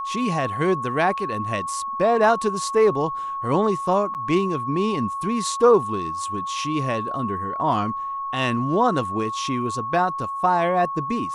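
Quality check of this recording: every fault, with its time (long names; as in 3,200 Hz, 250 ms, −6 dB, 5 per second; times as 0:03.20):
whistle 1,100 Hz −26 dBFS
0:04.14–0:04.15: drop-out 8.4 ms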